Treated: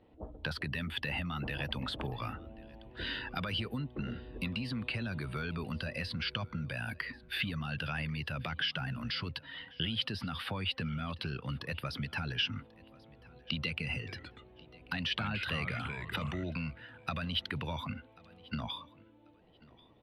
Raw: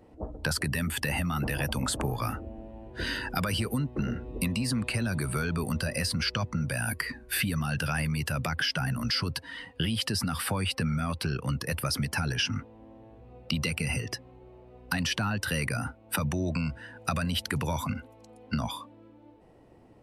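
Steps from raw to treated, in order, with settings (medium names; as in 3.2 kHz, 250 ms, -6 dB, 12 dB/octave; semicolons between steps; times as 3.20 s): resonant high shelf 5.1 kHz -13.5 dB, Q 3; 13.98–16.44 s: ever faster or slower copies 90 ms, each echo -3 st, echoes 2, each echo -6 dB; feedback delay 1089 ms, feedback 24%, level -23.5 dB; trim -8 dB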